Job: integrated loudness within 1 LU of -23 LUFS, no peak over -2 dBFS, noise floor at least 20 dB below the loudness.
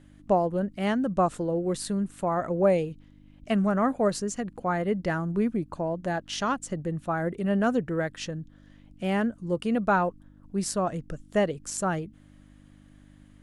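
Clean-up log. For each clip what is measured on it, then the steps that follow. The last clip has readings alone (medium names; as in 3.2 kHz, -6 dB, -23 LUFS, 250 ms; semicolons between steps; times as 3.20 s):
hum 50 Hz; highest harmonic 300 Hz; hum level -53 dBFS; loudness -28.0 LUFS; peak level -11.0 dBFS; loudness target -23.0 LUFS
-> de-hum 50 Hz, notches 6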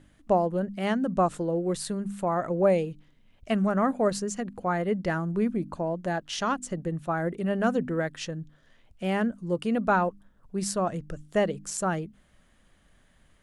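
hum not found; loudness -28.0 LUFS; peak level -11.0 dBFS; loudness target -23.0 LUFS
-> trim +5 dB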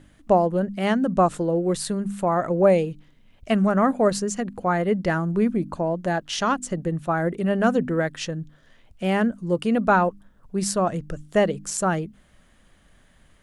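loudness -23.0 LUFS; peak level -6.0 dBFS; noise floor -58 dBFS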